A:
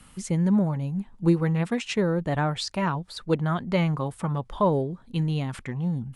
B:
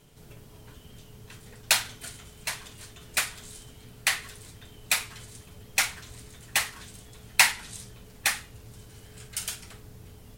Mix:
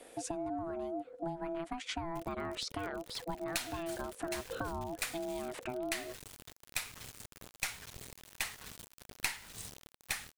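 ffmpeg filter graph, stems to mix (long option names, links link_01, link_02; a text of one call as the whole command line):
ffmpeg -i stem1.wav -i stem2.wav -filter_complex "[0:a]acompressor=threshold=-28dB:ratio=6,aeval=exprs='val(0)*sin(2*PI*500*n/s)':channel_layout=same,volume=0dB[link_01];[1:a]aeval=exprs='0.794*(cos(1*acos(clip(val(0)/0.794,-1,1)))-cos(1*PI/2))+0.0447*(cos(3*acos(clip(val(0)/0.794,-1,1)))-cos(3*PI/2))+0.0631*(cos(6*acos(clip(val(0)/0.794,-1,1)))-cos(6*PI/2))':channel_layout=same,acrusher=bits=6:mix=0:aa=0.000001,adelay=1850,volume=-2.5dB[link_02];[link_01][link_02]amix=inputs=2:normalize=0,acompressor=threshold=-36dB:ratio=3" out.wav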